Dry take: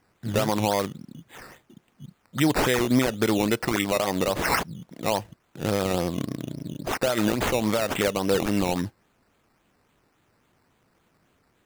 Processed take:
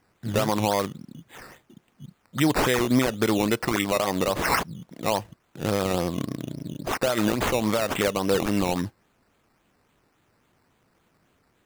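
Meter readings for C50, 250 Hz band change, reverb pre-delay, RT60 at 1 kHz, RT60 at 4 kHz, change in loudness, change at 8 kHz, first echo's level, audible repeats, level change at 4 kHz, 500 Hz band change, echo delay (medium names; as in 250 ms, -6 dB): no reverb, 0.0 dB, no reverb, no reverb, no reverb, 0.0 dB, 0.0 dB, no echo, no echo, 0.0 dB, 0.0 dB, no echo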